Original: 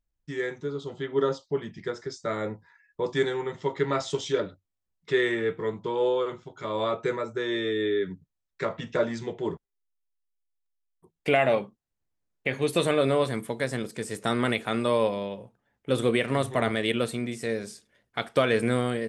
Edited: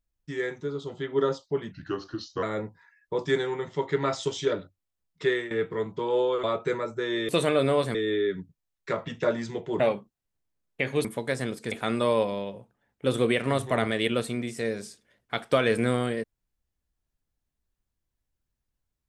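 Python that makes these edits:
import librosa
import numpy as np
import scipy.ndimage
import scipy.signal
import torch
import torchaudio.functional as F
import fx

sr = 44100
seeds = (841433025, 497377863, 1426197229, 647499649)

y = fx.edit(x, sr, fx.speed_span(start_s=1.72, length_s=0.58, speed=0.82),
    fx.fade_out_to(start_s=5.13, length_s=0.25, floor_db=-14.0),
    fx.cut(start_s=6.31, length_s=0.51),
    fx.cut(start_s=9.52, length_s=1.94),
    fx.move(start_s=12.71, length_s=0.66, to_s=7.67),
    fx.cut(start_s=14.04, length_s=0.52), tone=tone)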